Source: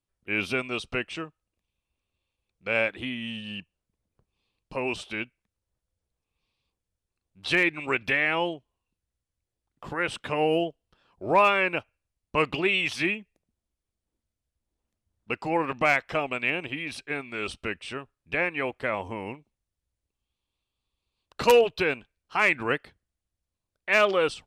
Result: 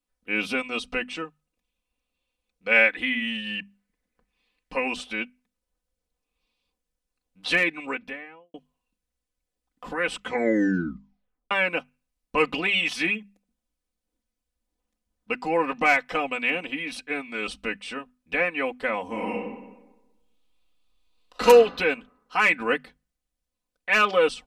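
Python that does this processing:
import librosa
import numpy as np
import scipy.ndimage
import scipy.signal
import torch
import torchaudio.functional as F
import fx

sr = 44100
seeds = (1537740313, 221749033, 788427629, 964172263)

y = fx.peak_eq(x, sr, hz=1900.0, db=11.5, octaves=0.75, at=(2.71, 4.88))
y = fx.studio_fade_out(y, sr, start_s=7.51, length_s=1.03)
y = fx.reverb_throw(y, sr, start_s=19.05, length_s=2.41, rt60_s=1.1, drr_db=-3.5)
y = fx.edit(y, sr, fx.tape_stop(start_s=10.11, length_s=1.4), tone=tone)
y = fx.peak_eq(y, sr, hz=88.0, db=-10.0, octaves=0.81)
y = fx.hum_notches(y, sr, base_hz=50, count=5)
y = y + 0.81 * np.pad(y, (int(4.0 * sr / 1000.0), 0))[:len(y)]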